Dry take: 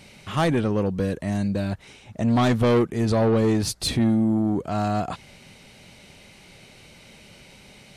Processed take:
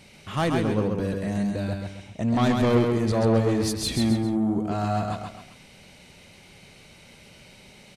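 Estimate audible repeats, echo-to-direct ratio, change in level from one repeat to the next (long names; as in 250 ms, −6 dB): 3, −3.5 dB, −8.0 dB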